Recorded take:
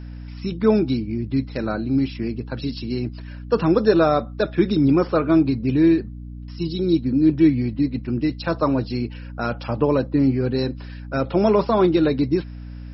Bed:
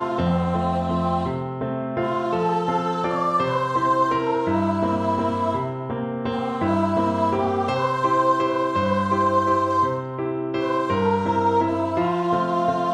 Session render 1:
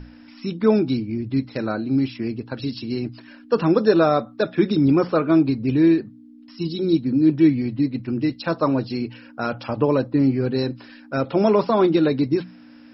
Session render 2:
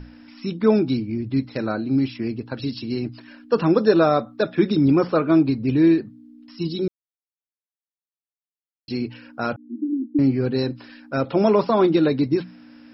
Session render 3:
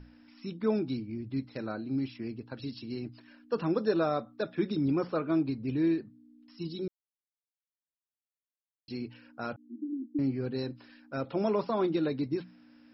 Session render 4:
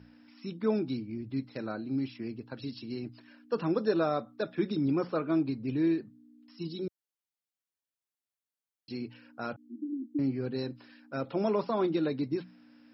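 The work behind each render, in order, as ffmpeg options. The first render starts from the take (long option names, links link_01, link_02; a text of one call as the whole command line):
ffmpeg -i in.wav -af "bandreject=frequency=60:width_type=h:width=6,bandreject=frequency=120:width_type=h:width=6,bandreject=frequency=180:width_type=h:width=6" out.wav
ffmpeg -i in.wav -filter_complex "[0:a]asettb=1/sr,asplit=3[link_01][link_02][link_03];[link_01]atrim=end=9.564[link_04];[link_02]atrim=start=9.56:end=10.19,asetpts=PTS-STARTPTS,afade=type=in:duration=0.004:curve=qsin,afade=type=out:start_time=0.626:duration=0.004:curve=qsin,asuperpass=centerf=280:order=12:qfactor=2.3[link_05];[link_03]atrim=start=10.186[link_06];[link_04][link_05]acrossfade=duration=0.004:curve1=hsin:curve2=qsin[link_07];[link_07][link_06]acrossfade=duration=0.004:curve1=qsin:curve2=hsin,asplit=3[link_08][link_09][link_10];[link_08]atrim=end=6.88,asetpts=PTS-STARTPTS,afade=type=out:start_time=6.876:duration=0.004:curve=hsin[link_11];[link_09]atrim=start=6.88:end=8.88,asetpts=PTS-STARTPTS,volume=0[link_12];[link_10]atrim=start=8.88,asetpts=PTS-STARTPTS,afade=type=in:duration=0.004:curve=hsin[link_13];[link_11][link_12][link_13]concat=n=3:v=0:a=1" out.wav
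ffmpeg -i in.wav -af "volume=-11.5dB" out.wav
ffmpeg -i in.wav -af "highpass=95" out.wav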